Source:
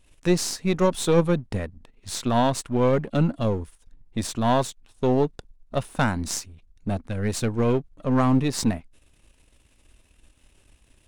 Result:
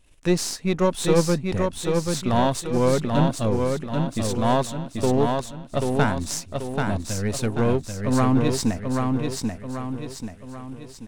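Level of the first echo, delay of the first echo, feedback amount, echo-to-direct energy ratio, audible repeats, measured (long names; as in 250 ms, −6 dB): −4.0 dB, 786 ms, 46%, −3.0 dB, 5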